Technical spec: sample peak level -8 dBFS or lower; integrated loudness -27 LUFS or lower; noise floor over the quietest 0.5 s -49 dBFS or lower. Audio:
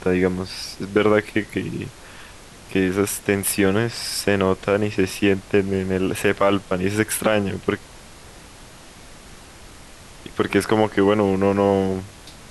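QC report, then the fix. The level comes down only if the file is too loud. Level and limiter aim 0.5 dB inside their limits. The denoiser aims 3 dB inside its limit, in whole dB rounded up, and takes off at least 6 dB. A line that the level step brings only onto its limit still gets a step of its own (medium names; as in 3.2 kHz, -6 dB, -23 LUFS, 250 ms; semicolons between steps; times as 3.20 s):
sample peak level -4.5 dBFS: fail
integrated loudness -21.0 LUFS: fail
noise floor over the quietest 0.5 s -43 dBFS: fail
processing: trim -6.5 dB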